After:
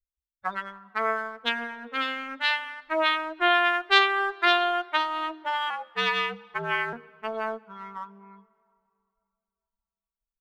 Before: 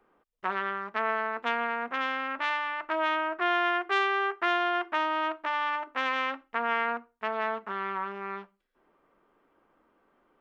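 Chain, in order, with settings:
spectral dynamics exaggerated over time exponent 3
graphic EQ with 15 bands 160 Hz −7 dB, 400 Hz −3 dB, 1,000 Hz −4 dB, 4,000 Hz +12 dB
0:05.70–0:06.93: frequency shifter −71 Hz
in parallel at −10 dB: dead-zone distortion −46.5 dBFS
on the sum: hum removal 51.86 Hz, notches 10
on a send at −22.5 dB: convolution reverb RT60 2.6 s, pre-delay 73 ms
on the sum: level +7 dB

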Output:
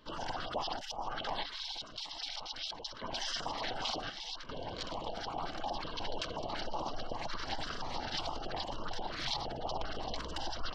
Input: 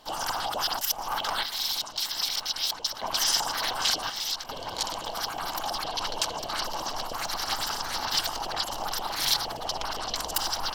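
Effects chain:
high-shelf EQ 2,900 Hz +9 dB
gate on every frequency bin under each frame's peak −25 dB strong
head-to-tape spacing loss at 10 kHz 44 dB
notch on a step sequencer 5.5 Hz 770–1,700 Hz
level +1 dB

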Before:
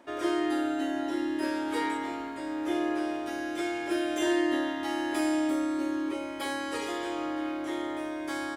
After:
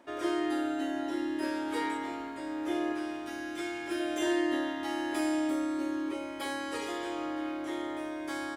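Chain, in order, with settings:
0:02.92–0:04.00: parametric band 540 Hz −7.5 dB 0.87 octaves
level −2.5 dB

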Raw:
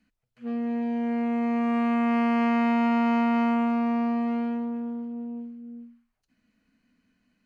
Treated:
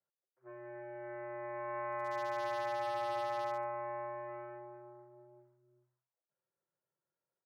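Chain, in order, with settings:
low-pass that shuts in the quiet parts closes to 700 Hz, open at −21.5 dBFS
single-sideband voice off tune −110 Hz 550–2,100 Hz
single-tap delay 144 ms −20 dB
wave folding −22 dBFS
level −6.5 dB

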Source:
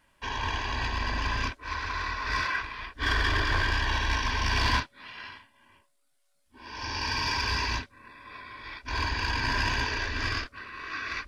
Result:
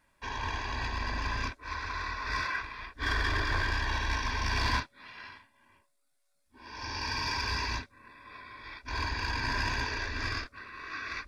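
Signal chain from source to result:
notch filter 3,000 Hz, Q 6.1
level −3.5 dB

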